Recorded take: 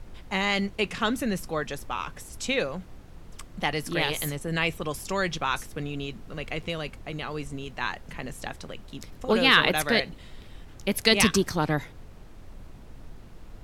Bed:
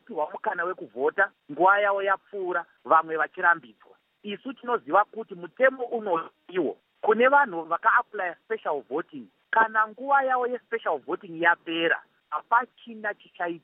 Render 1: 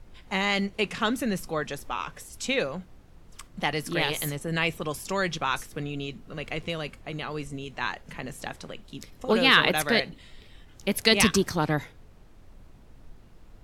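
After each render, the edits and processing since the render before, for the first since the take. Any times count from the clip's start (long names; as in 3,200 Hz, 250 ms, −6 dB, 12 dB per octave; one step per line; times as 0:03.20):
noise reduction from a noise print 6 dB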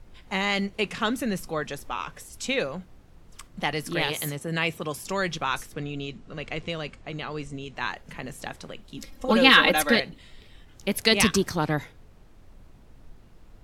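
0:04.08–0:05.04: high-pass filter 79 Hz
0:05.74–0:07.76: low-pass filter 8,400 Hz 24 dB per octave
0:08.97–0:09.96: comb filter 3.7 ms, depth 95%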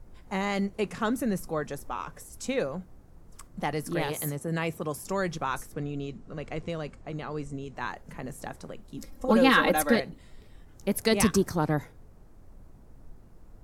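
parametric band 3,100 Hz −12 dB 1.6 octaves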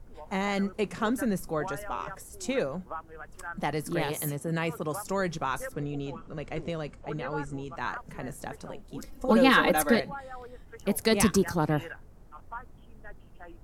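mix in bed −19 dB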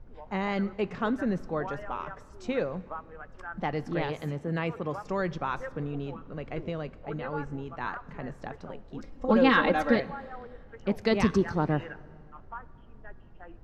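high-frequency loss of the air 200 metres
dense smooth reverb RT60 2.3 s, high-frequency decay 0.75×, DRR 18.5 dB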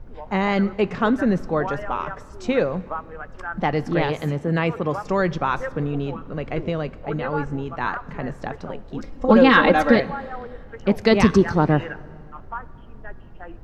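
level +9 dB
brickwall limiter −3 dBFS, peak gain reduction 3 dB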